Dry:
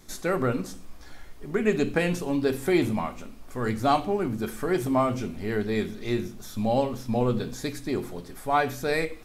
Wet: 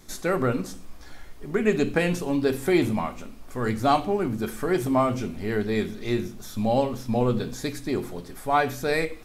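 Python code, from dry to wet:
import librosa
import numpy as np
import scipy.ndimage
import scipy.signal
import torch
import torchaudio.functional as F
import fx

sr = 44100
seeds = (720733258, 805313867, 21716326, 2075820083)

y = x * 10.0 ** (1.5 / 20.0)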